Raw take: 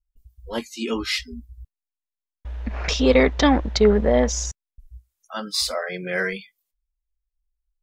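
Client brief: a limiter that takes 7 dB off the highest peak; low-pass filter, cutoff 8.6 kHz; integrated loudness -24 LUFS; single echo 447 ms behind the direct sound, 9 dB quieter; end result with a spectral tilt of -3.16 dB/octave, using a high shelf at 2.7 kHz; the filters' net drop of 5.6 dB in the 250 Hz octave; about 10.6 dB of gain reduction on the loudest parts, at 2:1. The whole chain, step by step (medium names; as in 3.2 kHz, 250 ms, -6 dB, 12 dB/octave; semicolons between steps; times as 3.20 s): low-pass 8.6 kHz; peaking EQ 250 Hz -6.5 dB; treble shelf 2.7 kHz +4.5 dB; compression 2:1, threshold -33 dBFS; peak limiter -21 dBFS; delay 447 ms -9 dB; trim +9 dB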